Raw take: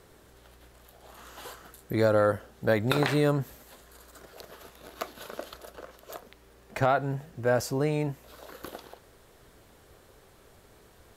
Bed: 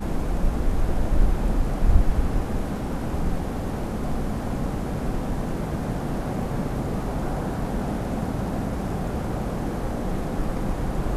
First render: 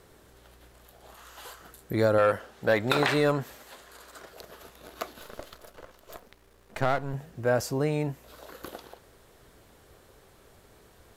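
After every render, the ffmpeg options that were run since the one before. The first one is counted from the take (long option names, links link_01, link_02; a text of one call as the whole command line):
ffmpeg -i in.wav -filter_complex "[0:a]asettb=1/sr,asplit=3[link_01][link_02][link_03];[link_01]atrim=end=1.154[link_04];[link_02]atrim=start=1.15:end=1.6,asetpts=PTS-STARTPTS,afade=type=in:duration=0.004:curve=qsin,afade=type=out:start_time=0.446:duration=0.004:curve=qsin,equalizer=frequency=210:width_type=o:width=2.5:gain=-8[link_05];[link_03]atrim=start=1.596[link_06];[link_04][link_05]acrossfade=duration=0.004:curve1=hsin:curve2=qsin[link_07];[link_07][link_06]acrossfade=duration=0.004:curve1=qsin:curve2=hsin,asettb=1/sr,asplit=3[link_08][link_09][link_10];[link_08]atrim=end=2.184[link_11];[link_09]atrim=start=2.18:end=4.29,asetpts=PTS-STARTPTS,afade=type=in:duration=0.004:curve=qsin,afade=type=out:start_time=2.106:duration=0.004:curve=qsin,asplit=2[link_12][link_13];[link_13]highpass=frequency=720:poles=1,volume=11dB,asoftclip=type=tanh:threshold=-11.5dB[link_14];[link_12][link_14]amix=inputs=2:normalize=0,lowpass=frequency=4800:poles=1,volume=-6dB[link_15];[link_10]atrim=start=4.286[link_16];[link_11][link_15]acrossfade=duration=0.004:curve1=hsin:curve2=qsin[link_17];[link_17][link_16]acrossfade=duration=0.004:curve1=qsin:curve2=hsin,asettb=1/sr,asplit=3[link_18][link_19][link_20];[link_18]atrim=end=5.204[link_21];[link_19]atrim=start=5.2:end=7.14,asetpts=PTS-STARTPTS,afade=type=in:duration=0.004:curve=qsin,afade=type=out:start_time=1.936:duration=0.004:curve=qsin,aeval=exprs='if(lt(val(0),0),0.251*val(0),val(0))':channel_layout=same[link_22];[link_20]atrim=start=7.136[link_23];[link_21][link_22]acrossfade=duration=0.004:curve1=hsin:curve2=qsin[link_24];[link_24][link_23]acrossfade=duration=0.004:curve1=qsin:curve2=hsin" out.wav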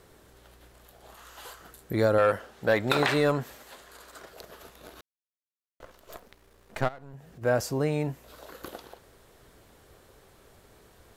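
ffmpeg -i in.wav -filter_complex "[0:a]asplit=3[link_01][link_02][link_03];[link_01]afade=type=out:start_time=6.87:duration=0.02[link_04];[link_02]acompressor=threshold=-48dB:ratio=2.5:attack=3.2:release=140:knee=1:detection=peak,afade=type=in:start_time=6.87:duration=0.02,afade=type=out:start_time=7.41:duration=0.02[link_05];[link_03]afade=type=in:start_time=7.41:duration=0.02[link_06];[link_04][link_05][link_06]amix=inputs=3:normalize=0,asplit=3[link_07][link_08][link_09];[link_07]atrim=end=5.01,asetpts=PTS-STARTPTS,afade=type=out:start_time=5.006:duration=0.004:curve=hsin[link_10];[link_08]atrim=start=5.01:end=5.8,asetpts=PTS-STARTPTS,volume=0[link_11];[link_09]atrim=start=5.8,asetpts=PTS-STARTPTS,afade=type=in:duration=0.004:curve=hsin[link_12];[link_10][link_11][link_12]concat=n=3:v=0:a=1" out.wav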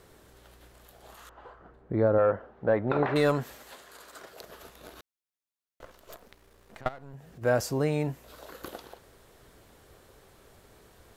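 ffmpeg -i in.wav -filter_complex "[0:a]asettb=1/sr,asplit=3[link_01][link_02][link_03];[link_01]atrim=end=1.294[link_04];[link_02]atrim=start=1.29:end=3.16,asetpts=PTS-STARTPTS,afade=type=in:duration=0.004:curve=qsin,afade=type=out:start_time=1.866:duration=0.004:curve=qsin,lowpass=1100[link_05];[link_03]atrim=start=3.156[link_06];[link_04][link_05]acrossfade=duration=0.004:curve1=hsin:curve2=qsin[link_07];[link_07][link_06]acrossfade=duration=0.004:curve1=qsin:curve2=hsin,asettb=1/sr,asplit=3[link_08][link_09][link_10];[link_08]atrim=end=3.754[link_11];[link_09]atrim=start=3.75:end=4.46,asetpts=PTS-STARTPTS,afade=type=in:duration=0.004:curve=qsin,afade=type=out:start_time=0.706:duration=0.004:curve=qsin,highpass=frequency=130:poles=1[link_12];[link_10]atrim=start=4.456[link_13];[link_11][link_12]acrossfade=duration=0.004:curve1=hsin:curve2=qsin[link_14];[link_14][link_13]acrossfade=duration=0.004:curve1=qsin:curve2=hsin,asettb=1/sr,asplit=3[link_15][link_16][link_17];[link_15]atrim=end=6.144[link_18];[link_16]atrim=start=6.14:end=6.86,asetpts=PTS-STARTPTS,afade=type=in:duration=0.004:curve=qsin,afade=type=out:start_time=0.716:duration=0.004:curve=qsin,acompressor=threshold=-44dB:ratio=6:attack=3.2:release=140:knee=1:detection=peak[link_19];[link_17]atrim=start=6.856[link_20];[link_18][link_19]acrossfade=duration=0.004:curve1=hsin:curve2=qsin[link_21];[link_21][link_20]acrossfade=duration=0.004:curve1=qsin:curve2=hsin" out.wav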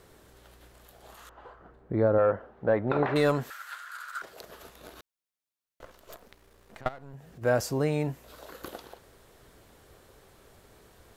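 ffmpeg -i in.wav -filter_complex "[0:a]asettb=1/sr,asplit=3[link_01][link_02][link_03];[link_01]atrim=end=3.504[link_04];[link_02]atrim=start=3.5:end=4.22,asetpts=PTS-STARTPTS,afade=type=in:duration=0.004:curve=qsin,afade=type=out:start_time=0.716:duration=0.004:curve=qsin,highpass=frequency=1400:width_type=q:width=8.2[link_05];[link_03]atrim=start=4.216[link_06];[link_04][link_05]acrossfade=duration=0.004:curve1=hsin:curve2=qsin[link_07];[link_07][link_06]acrossfade=duration=0.004:curve1=qsin:curve2=hsin" out.wav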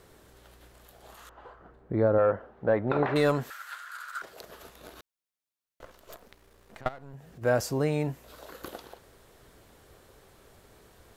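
ffmpeg -i in.wav -af anull out.wav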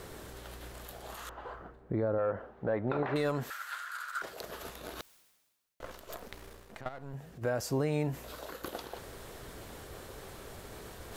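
ffmpeg -i in.wav -af "alimiter=limit=-22dB:level=0:latency=1:release=199,areverse,acompressor=mode=upward:threshold=-36dB:ratio=2.5,areverse" out.wav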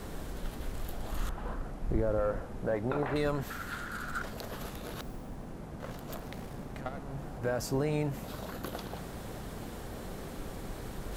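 ffmpeg -i in.wav -i bed.wav -filter_complex "[1:a]volume=-16dB[link_01];[0:a][link_01]amix=inputs=2:normalize=0" out.wav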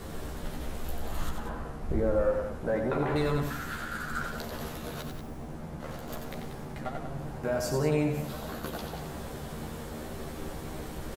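ffmpeg -i in.wav -filter_complex "[0:a]asplit=2[link_01][link_02];[link_02]adelay=13,volume=-3dB[link_03];[link_01][link_03]amix=inputs=2:normalize=0,aecho=1:1:90.38|186.6:0.501|0.316" out.wav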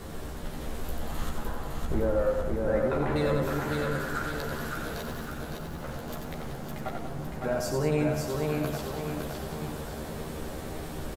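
ffmpeg -i in.wav -af "aecho=1:1:560|1120|1680|2240|2800|3360:0.668|0.307|0.141|0.0651|0.0299|0.0138" out.wav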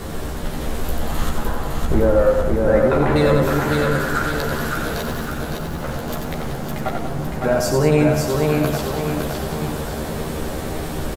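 ffmpeg -i in.wav -af "volume=11dB" out.wav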